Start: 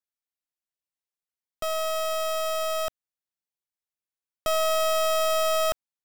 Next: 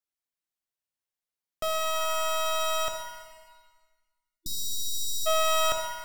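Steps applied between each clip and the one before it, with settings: spectral delete 3.6–5.26, 330–3500 Hz; shimmer reverb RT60 1.3 s, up +7 st, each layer -8 dB, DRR 4.5 dB; gain -1 dB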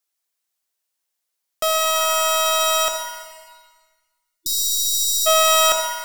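tone controls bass -14 dB, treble +5 dB; gain +9 dB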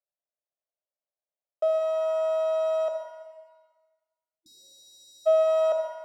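band-pass 600 Hz, Q 5.6; gain +1.5 dB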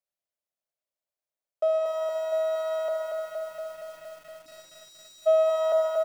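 feedback echo 0.564 s, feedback 50%, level -22.5 dB; lo-fi delay 0.233 s, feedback 80%, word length 9-bit, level -4 dB

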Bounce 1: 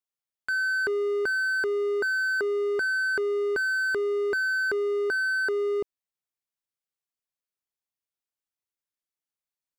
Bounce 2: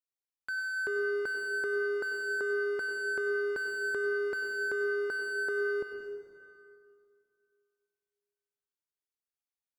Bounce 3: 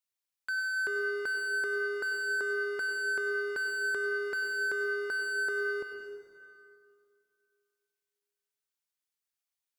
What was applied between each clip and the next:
reverb RT60 2.4 s, pre-delay 83 ms, DRR 4 dB; gain -8 dB
tilt shelf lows -5 dB

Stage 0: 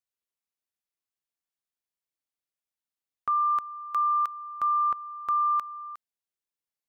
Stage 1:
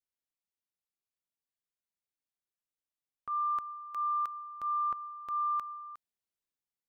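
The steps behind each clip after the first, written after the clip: low shelf 390 Hz +5.5 dB; transient shaper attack -6 dB, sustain +4 dB; gain -7 dB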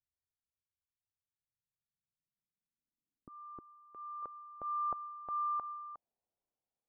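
tremolo saw down 0.71 Hz, depth 30%; low-pass sweep 100 Hz -> 720 Hz, 1.27–4.97; gain +4.5 dB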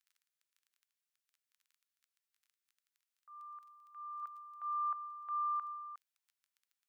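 crackle 16/s -59 dBFS; inverse Chebyshev high-pass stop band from 290 Hz, stop band 70 dB; gain +4.5 dB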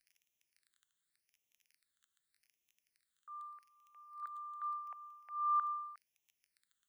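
phaser stages 8, 0.84 Hz, lowest notch 700–1400 Hz; gain +7 dB

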